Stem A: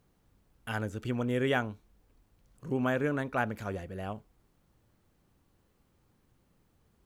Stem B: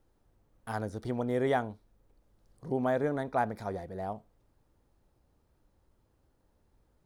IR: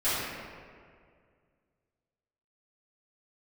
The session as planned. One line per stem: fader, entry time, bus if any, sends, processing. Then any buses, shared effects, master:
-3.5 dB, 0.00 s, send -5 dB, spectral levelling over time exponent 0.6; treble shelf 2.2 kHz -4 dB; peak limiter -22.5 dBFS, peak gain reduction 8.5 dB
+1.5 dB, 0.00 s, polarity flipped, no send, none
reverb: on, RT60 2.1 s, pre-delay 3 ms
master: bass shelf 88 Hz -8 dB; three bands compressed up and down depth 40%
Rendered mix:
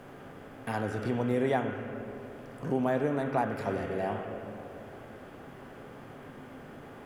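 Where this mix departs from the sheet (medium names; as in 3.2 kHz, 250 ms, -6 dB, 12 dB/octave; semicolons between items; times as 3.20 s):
stem A -3.5 dB -> -10.5 dB; stem B: polarity flipped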